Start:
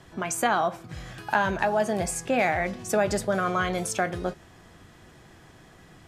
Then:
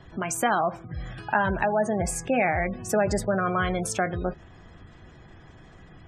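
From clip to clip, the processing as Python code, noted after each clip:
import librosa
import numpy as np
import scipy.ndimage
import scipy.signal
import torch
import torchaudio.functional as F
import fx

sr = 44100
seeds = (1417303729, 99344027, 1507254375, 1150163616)

y = fx.spec_gate(x, sr, threshold_db=-25, keep='strong')
y = fx.low_shelf(y, sr, hz=100.0, db=9.5)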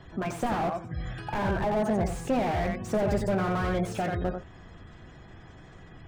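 y = x + 10.0 ** (-8.5 / 20.0) * np.pad(x, (int(90 * sr / 1000.0), 0))[:len(x)]
y = fx.slew_limit(y, sr, full_power_hz=37.0)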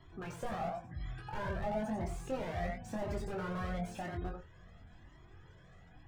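y = fx.doubler(x, sr, ms=23.0, db=-5.0)
y = fx.comb_cascade(y, sr, direction='rising', hz=0.97)
y = F.gain(torch.from_numpy(y), -7.0).numpy()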